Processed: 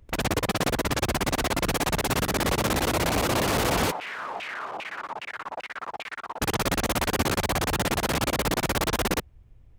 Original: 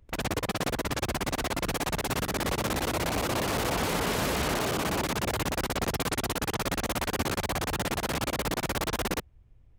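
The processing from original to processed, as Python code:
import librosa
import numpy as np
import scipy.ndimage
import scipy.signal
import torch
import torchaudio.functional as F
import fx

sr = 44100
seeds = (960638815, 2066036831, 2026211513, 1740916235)

y = fx.filter_lfo_bandpass(x, sr, shape='saw_down', hz=2.5, low_hz=710.0, high_hz=2700.0, q=3.6, at=(3.9, 6.4), fade=0.02)
y = y * 10.0 ** (4.5 / 20.0)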